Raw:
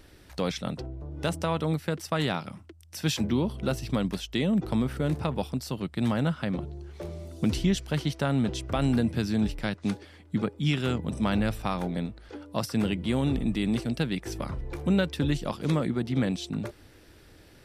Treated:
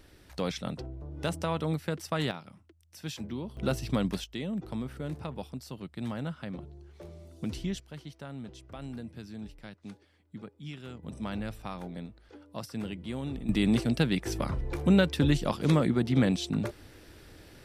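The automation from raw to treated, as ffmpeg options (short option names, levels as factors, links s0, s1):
-af "asetnsamples=n=441:p=0,asendcmd='2.31 volume volume -11dB;3.57 volume volume -1dB;4.24 volume volume -9dB;7.8 volume volume -16dB;11.03 volume volume -9.5dB;13.49 volume volume 2dB',volume=0.708"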